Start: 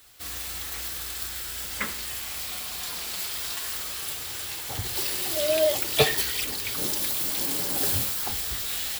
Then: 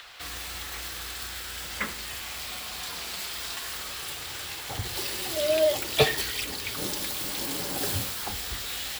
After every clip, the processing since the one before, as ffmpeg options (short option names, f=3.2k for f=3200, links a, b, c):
-filter_complex "[0:a]highshelf=f=7.6k:g=-7.5,acrossover=split=340|520|4600[a][b][c][d];[c]acompressor=mode=upward:threshold=-35dB:ratio=2.5[e];[a][b][e][d]amix=inputs=4:normalize=0"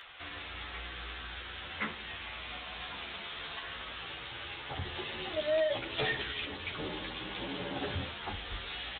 -filter_complex "[0:a]aresample=8000,asoftclip=type=hard:threshold=-25.5dB,aresample=44100,asplit=2[a][b];[b]adelay=11.5,afreqshift=0.63[c];[a][c]amix=inputs=2:normalize=1"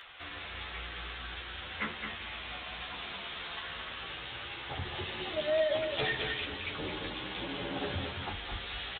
-af "aecho=1:1:217:0.501"